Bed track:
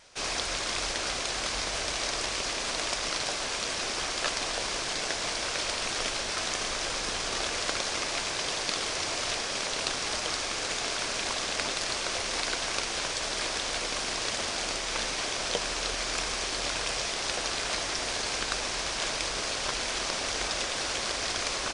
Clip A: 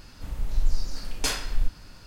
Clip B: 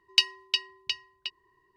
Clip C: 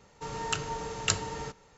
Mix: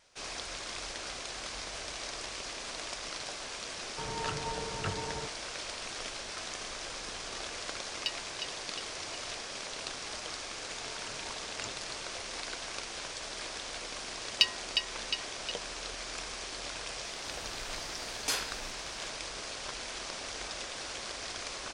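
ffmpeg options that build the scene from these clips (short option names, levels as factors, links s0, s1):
-filter_complex "[3:a]asplit=2[s0][s1];[2:a]asplit=2[s2][s3];[0:a]volume=0.355[s4];[s0]lowpass=1600[s5];[1:a]highpass=f=380:p=1[s6];[s5]atrim=end=1.77,asetpts=PTS-STARTPTS,volume=0.794,afade=t=in:d=0.004:c=hsin,afade=t=out:st=1.766:d=0.004:c=hsin,adelay=3760[s7];[s2]atrim=end=1.76,asetpts=PTS-STARTPTS,volume=0.2,afade=t=in:d=0.004:c=hsin,afade=t=out:st=1.756:d=0.004:c=hsin,adelay=7880[s8];[s1]atrim=end=1.77,asetpts=PTS-STARTPTS,volume=0.133,afade=t=in:d=0.004:c=hsin,afade=t=out:st=1.766:d=0.004:c=hsin,adelay=10540[s9];[s3]atrim=end=1.76,asetpts=PTS-STARTPTS,volume=0.668,afade=t=in:d=0.004:c=hsin,afade=t=out:st=1.756:d=0.004:c=hsin,adelay=14230[s10];[s6]atrim=end=2.06,asetpts=PTS-STARTPTS,volume=0.631,afade=t=in:d=0.004:c=hsin,afade=t=out:st=2.056:d=0.004:c=hsin,adelay=17040[s11];[s4][s7][s8][s9][s10][s11]amix=inputs=6:normalize=0"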